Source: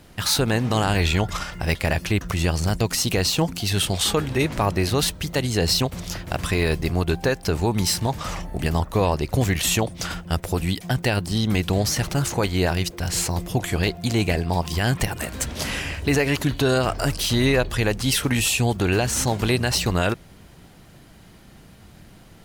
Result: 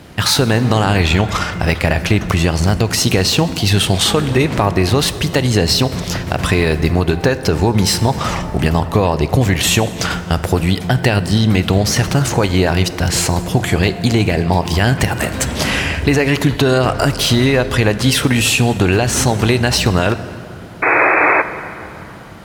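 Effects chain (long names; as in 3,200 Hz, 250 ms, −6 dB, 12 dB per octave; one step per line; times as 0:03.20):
high-pass filter 59 Hz
high-shelf EQ 5,700 Hz −7.5 dB
downward compressor, threshold −21 dBFS, peak gain reduction 6 dB
sound drawn into the spectrogram noise, 0:20.82–0:21.42, 290–2,600 Hz −23 dBFS
dense smooth reverb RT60 3.2 s, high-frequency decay 0.5×, DRR 12 dB
boost into a limiter +12.5 dB
level −1 dB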